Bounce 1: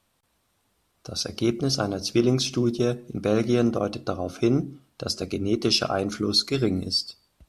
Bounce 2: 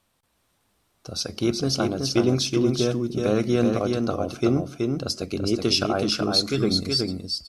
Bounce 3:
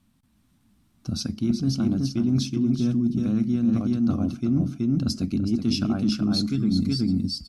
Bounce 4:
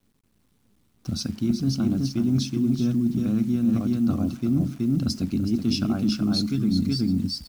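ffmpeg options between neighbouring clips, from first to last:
-af "aecho=1:1:374:0.631"
-af "lowshelf=f=330:t=q:w=3:g=11,areverse,acompressor=threshold=0.141:ratio=6,areverse,volume=0.708"
-af "acrusher=bits=9:dc=4:mix=0:aa=0.000001"

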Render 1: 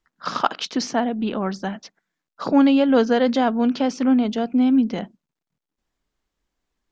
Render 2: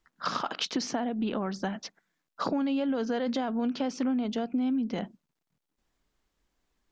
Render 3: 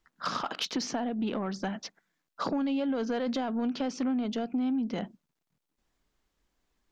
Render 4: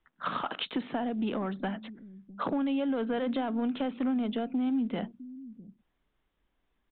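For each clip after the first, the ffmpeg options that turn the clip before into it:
-af "alimiter=limit=0.224:level=0:latency=1:release=14,acompressor=threshold=0.0355:ratio=5,volume=1.19"
-af "asoftclip=type=tanh:threshold=0.0891"
-filter_complex "[0:a]acrossover=split=290|1700[s0][s1][s2];[s0]aecho=1:1:657:0.266[s3];[s1]acrusher=bits=6:mode=log:mix=0:aa=0.000001[s4];[s3][s4][s2]amix=inputs=3:normalize=0,aresample=8000,aresample=44100"

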